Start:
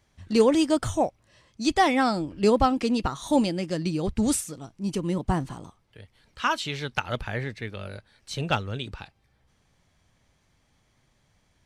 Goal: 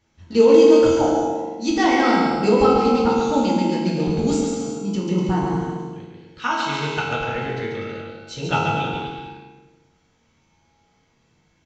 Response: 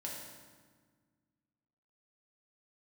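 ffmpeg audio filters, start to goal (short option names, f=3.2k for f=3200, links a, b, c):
-filter_complex "[0:a]aecho=1:1:140|245|323.8|382.8|427.1:0.631|0.398|0.251|0.158|0.1[a];[1:a]atrim=start_sample=2205,asetrate=66150,aresample=44100[b];[a][b]afir=irnorm=-1:irlink=0,aresample=16000,aresample=44100,volume=6.5dB"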